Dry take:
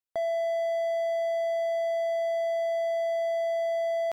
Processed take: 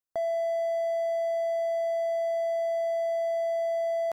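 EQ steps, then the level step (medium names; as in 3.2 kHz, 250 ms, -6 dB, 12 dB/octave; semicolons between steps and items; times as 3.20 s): peaking EQ 3.1 kHz -7 dB 0.84 oct; band-stop 2.2 kHz, Q 7; 0.0 dB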